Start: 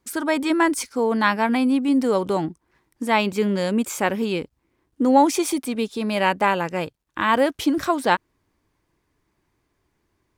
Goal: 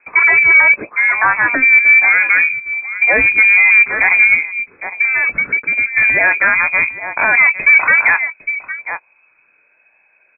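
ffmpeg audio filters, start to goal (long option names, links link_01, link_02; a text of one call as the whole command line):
ffmpeg -i in.wav -filter_complex "[0:a]asplit=3[link_01][link_02][link_03];[link_01]afade=type=out:start_time=0.86:duration=0.02[link_04];[link_02]highpass=530,afade=type=in:start_time=0.86:duration=0.02,afade=type=out:start_time=1.61:duration=0.02[link_05];[link_03]afade=type=in:start_time=1.61:duration=0.02[link_06];[link_04][link_05][link_06]amix=inputs=3:normalize=0,aecho=1:1:807:0.133,aphaser=in_gain=1:out_gain=1:delay=1.1:decay=0.38:speed=0.25:type=triangular,asoftclip=type=tanh:threshold=-17dB,lowpass=frequency=2200:width_type=q:width=0.5098,lowpass=frequency=2200:width_type=q:width=0.6013,lowpass=frequency=2200:width_type=q:width=0.9,lowpass=frequency=2200:width_type=q:width=2.563,afreqshift=-2600,asettb=1/sr,asplit=3[link_07][link_08][link_09];[link_07]atrim=end=4.344[link_10];[link_08]atrim=start=4.34:end=5.93,asetpts=PTS-STARTPTS,afade=type=in:duration=0.004:curve=qsin,afade=type=out:start_time=1.586:duration=0.004:curve=qsin,acompressor=threshold=-27dB:ratio=4[link_11];[link_09]atrim=start=5.926[link_12];[link_10][link_11]acrossfade=duration=0.004:curve1=hsin:curve2=qsin[link_13];[link_13][link_12]acrossfade=duration=0.004:curve1=qsin:curve2=hsin,asplit=2[link_14][link_15];[link_15]adelay=19,volume=-13.5dB[link_16];[link_14][link_16]amix=inputs=2:normalize=0,alimiter=level_in=14.5dB:limit=-1dB:release=50:level=0:latency=1,volume=-1dB" out.wav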